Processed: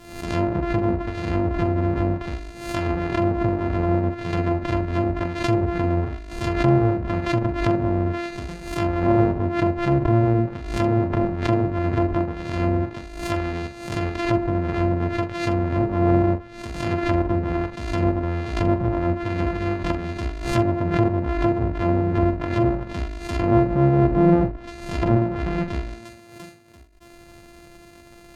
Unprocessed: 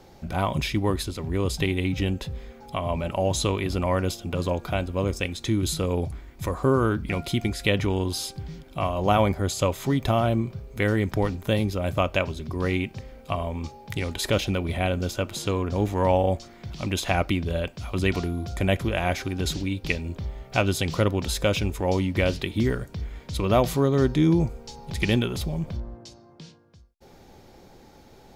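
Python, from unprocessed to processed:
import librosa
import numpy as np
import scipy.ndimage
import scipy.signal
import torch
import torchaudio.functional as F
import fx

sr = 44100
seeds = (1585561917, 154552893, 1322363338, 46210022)

y = np.r_[np.sort(x[:len(x) // 128 * 128].reshape(-1, 128), axis=1).ravel(), x[len(x) // 128 * 128:]]
y = fx.env_lowpass_down(y, sr, base_hz=840.0, full_db=-20.5)
y = fx.hpss(y, sr, part='harmonic', gain_db=4)
y = fx.room_early_taps(y, sr, ms=(16, 44), db=(-16.0, -9.0))
y = fx.pre_swell(y, sr, db_per_s=77.0)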